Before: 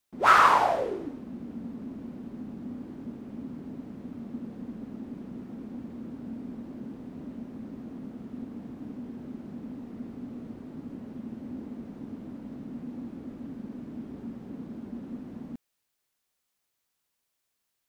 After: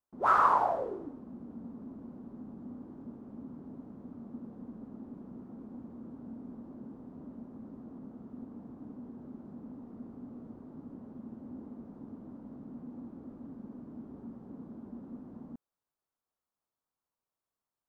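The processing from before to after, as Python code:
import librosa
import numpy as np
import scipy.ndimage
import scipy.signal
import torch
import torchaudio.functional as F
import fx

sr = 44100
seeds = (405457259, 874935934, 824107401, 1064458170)

y = fx.high_shelf_res(x, sr, hz=1600.0, db=-11.0, q=1.5)
y = y * 10.0 ** (-6.5 / 20.0)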